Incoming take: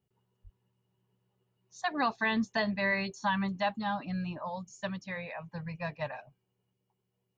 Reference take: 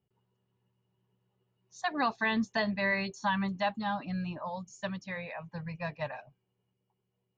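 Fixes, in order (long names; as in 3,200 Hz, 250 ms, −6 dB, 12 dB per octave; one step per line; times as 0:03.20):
high-pass at the plosives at 0:00.43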